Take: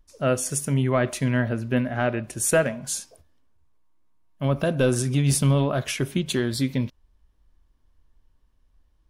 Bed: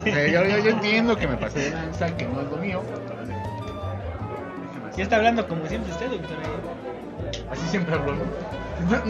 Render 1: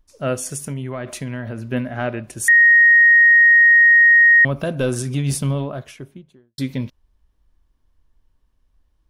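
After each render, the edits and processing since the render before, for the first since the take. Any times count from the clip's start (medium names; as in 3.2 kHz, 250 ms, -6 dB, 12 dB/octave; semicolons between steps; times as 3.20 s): 0.47–1.70 s: compression, threshold -23 dBFS; 2.48–4.45 s: bleep 1.87 kHz -7.5 dBFS; 5.14–6.58 s: studio fade out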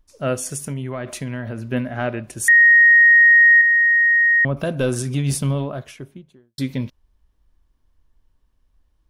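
3.61–4.57 s: low-pass 1.4 kHz 6 dB/octave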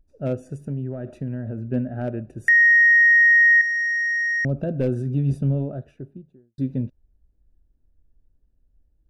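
local Wiener filter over 41 samples; dynamic bell 3.9 kHz, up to -4 dB, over -27 dBFS, Q 0.79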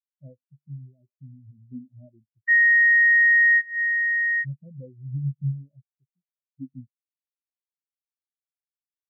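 compression 5:1, threshold -25 dBFS, peak gain reduction 10.5 dB; spectral contrast expander 4:1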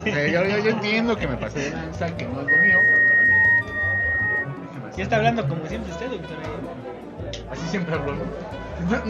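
add bed -1 dB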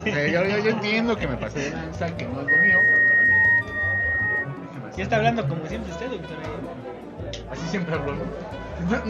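trim -1 dB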